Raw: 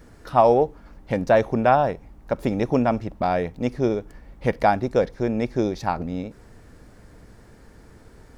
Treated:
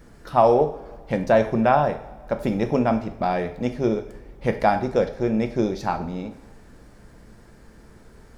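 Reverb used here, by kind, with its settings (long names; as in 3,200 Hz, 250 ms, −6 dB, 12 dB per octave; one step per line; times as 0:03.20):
coupled-rooms reverb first 0.5 s, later 2 s, from −18 dB, DRR 6 dB
level −1 dB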